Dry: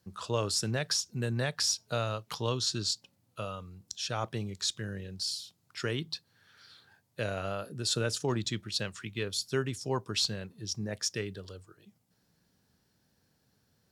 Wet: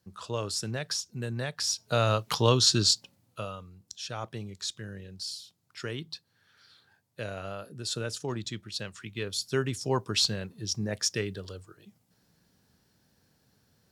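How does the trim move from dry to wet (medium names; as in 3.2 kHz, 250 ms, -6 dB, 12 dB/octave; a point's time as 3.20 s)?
1.61 s -2 dB
2.11 s +9 dB
2.84 s +9 dB
3.74 s -3 dB
8.79 s -3 dB
9.81 s +4 dB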